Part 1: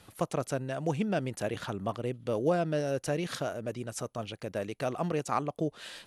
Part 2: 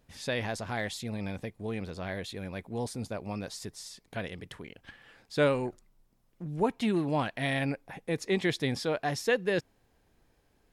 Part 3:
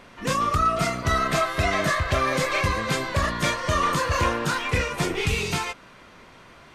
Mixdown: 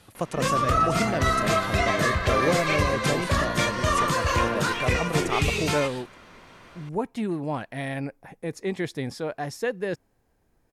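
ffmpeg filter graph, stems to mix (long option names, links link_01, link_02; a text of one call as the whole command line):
ffmpeg -i stem1.wav -i stem2.wav -i stem3.wav -filter_complex "[0:a]volume=2dB[link_01];[1:a]equalizer=frequency=3400:width_type=o:width=1.3:gain=-7,adelay=350,volume=0dB[link_02];[2:a]adelay=150,volume=-0.5dB[link_03];[link_01][link_02][link_03]amix=inputs=3:normalize=0" out.wav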